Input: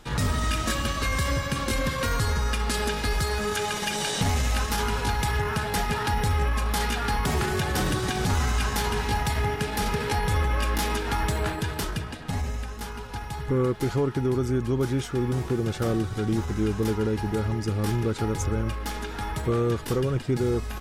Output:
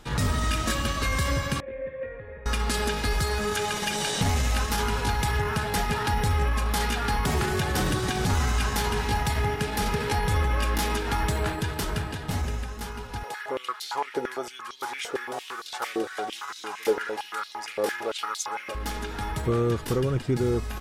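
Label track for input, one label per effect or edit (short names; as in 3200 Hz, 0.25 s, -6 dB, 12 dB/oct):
1.600000	2.460000	vocal tract filter e
11.350000	12.110000	echo throw 0.52 s, feedback 15%, level -7.5 dB
13.230000	18.750000	stepped high-pass 8.8 Hz 490–4000 Hz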